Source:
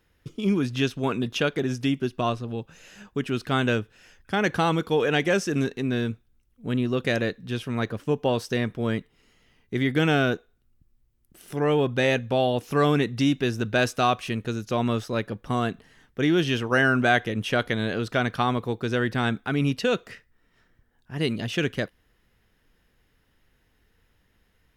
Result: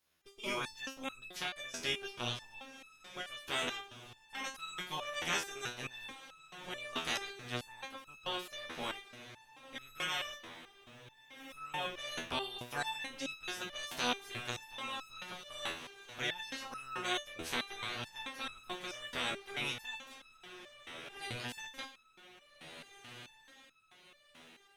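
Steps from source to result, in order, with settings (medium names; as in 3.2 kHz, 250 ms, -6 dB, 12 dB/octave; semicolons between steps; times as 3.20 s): spectral peaks clipped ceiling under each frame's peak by 28 dB; echo that smears into a reverb 1625 ms, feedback 43%, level -11.5 dB; resonator arpeggio 4.6 Hz 82–1300 Hz; trim -3 dB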